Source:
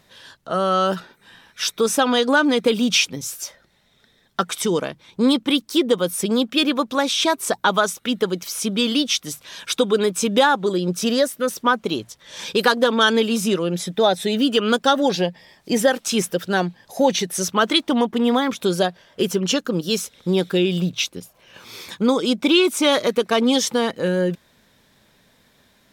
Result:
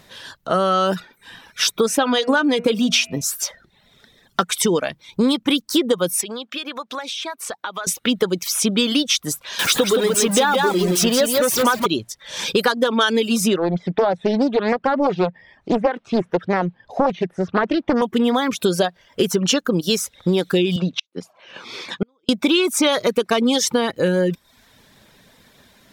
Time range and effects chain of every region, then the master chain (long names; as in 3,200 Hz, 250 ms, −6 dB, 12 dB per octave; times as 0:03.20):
0:01.85–0:03.23: high-shelf EQ 6,100 Hz −5 dB + hum removal 119.5 Hz, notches 24 + steady tone 660 Hz −49 dBFS
0:06.21–0:07.87: high-pass filter 1,100 Hz 6 dB per octave + high-shelf EQ 5,400 Hz −11 dB + downward compressor 4 to 1, threshold −33 dBFS
0:09.59–0:11.86: converter with a step at zero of −22.5 dBFS + low-shelf EQ 130 Hz −11.5 dB + single-tap delay 168 ms −4 dB
0:13.56–0:18.02: de-essing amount 75% + low-pass filter 2,100 Hz + highs frequency-modulated by the lows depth 0.48 ms
0:20.76–0:22.29: band-pass filter 200–4,500 Hz + gate with flip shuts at −15 dBFS, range −40 dB
whole clip: reverb reduction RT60 0.54 s; downward compressor 4 to 1, threshold −22 dBFS; level +7 dB